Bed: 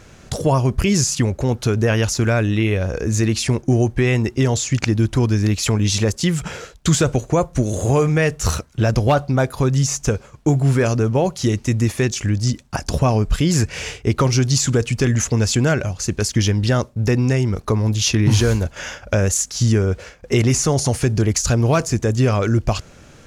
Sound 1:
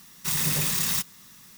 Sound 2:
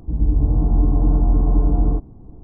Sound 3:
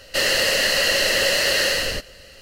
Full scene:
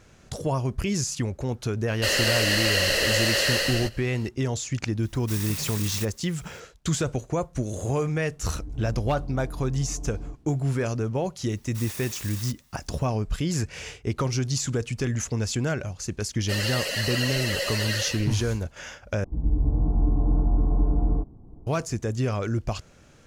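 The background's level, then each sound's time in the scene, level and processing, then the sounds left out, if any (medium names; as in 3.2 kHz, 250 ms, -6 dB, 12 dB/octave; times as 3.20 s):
bed -9.5 dB
1.88 s: add 3 -4 dB
5.03 s: add 1 -8.5 dB
8.35 s: add 2 -15 dB + peak limiter -14 dBFS
11.50 s: add 1 -13 dB + high-pass 410 Hz
16.34 s: add 3 -5 dB + expander on every frequency bin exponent 2
19.24 s: replace with 2 -6 dB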